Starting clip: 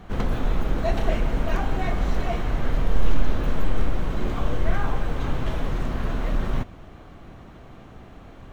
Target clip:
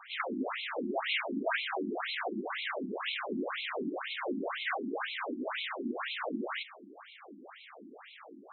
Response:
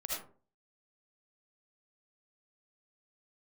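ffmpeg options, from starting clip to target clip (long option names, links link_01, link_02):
-filter_complex "[0:a]crystalizer=i=6.5:c=0,asplit=2[link_01][link_02];[1:a]atrim=start_sample=2205[link_03];[link_02][link_03]afir=irnorm=-1:irlink=0,volume=-17.5dB[link_04];[link_01][link_04]amix=inputs=2:normalize=0,afftfilt=real='re*between(b*sr/1024,250*pow(3000/250,0.5+0.5*sin(2*PI*2*pts/sr))/1.41,250*pow(3000/250,0.5+0.5*sin(2*PI*2*pts/sr))*1.41)':imag='im*between(b*sr/1024,250*pow(3000/250,0.5+0.5*sin(2*PI*2*pts/sr))/1.41,250*pow(3000/250,0.5+0.5*sin(2*PI*2*pts/sr))*1.41)':win_size=1024:overlap=0.75"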